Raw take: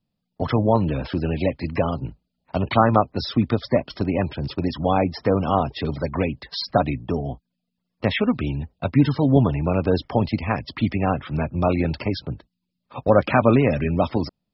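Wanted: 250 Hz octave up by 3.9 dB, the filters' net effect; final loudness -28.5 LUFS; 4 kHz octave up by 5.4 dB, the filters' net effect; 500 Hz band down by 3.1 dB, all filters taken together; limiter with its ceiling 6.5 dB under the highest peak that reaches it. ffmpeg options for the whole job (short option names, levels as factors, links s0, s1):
-af "equalizer=f=250:t=o:g=6,equalizer=f=500:t=o:g=-5.5,equalizer=f=4000:t=o:g=6.5,volume=0.473,alimiter=limit=0.168:level=0:latency=1"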